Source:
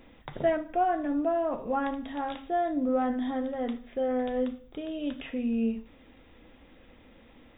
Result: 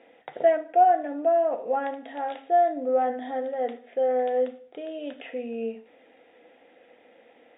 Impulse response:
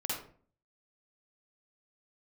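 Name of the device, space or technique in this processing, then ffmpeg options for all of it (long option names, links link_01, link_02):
phone earpiece: -af "highpass=380,equalizer=frequency=480:width_type=q:width=4:gain=8,equalizer=frequency=720:width_type=q:width=4:gain=9,equalizer=frequency=1100:width_type=q:width=4:gain=-9,equalizer=frequency=1900:width_type=q:width=4:gain=3,lowpass=frequency=3300:width=0.5412,lowpass=frequency=3300:width=1.3066"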